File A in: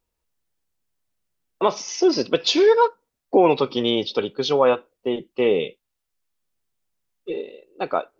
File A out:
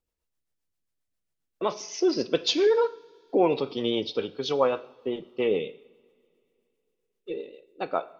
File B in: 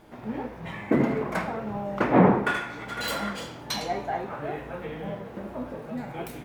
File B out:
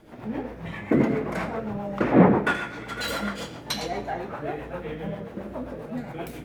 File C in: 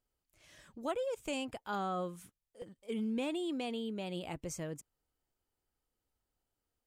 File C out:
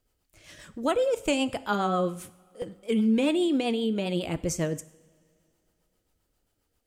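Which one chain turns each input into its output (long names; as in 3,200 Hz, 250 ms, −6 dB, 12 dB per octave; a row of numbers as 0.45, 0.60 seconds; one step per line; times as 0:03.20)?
rotating-speaker cabinet horn 7.5 Hz
coupled-rooms reverb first 0.7 s, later 2.9 s, from −19 dB, DRR 14 dB
loudness normalisation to −27 LKFS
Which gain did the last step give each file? −4.0, +3.5, +13.5 decibels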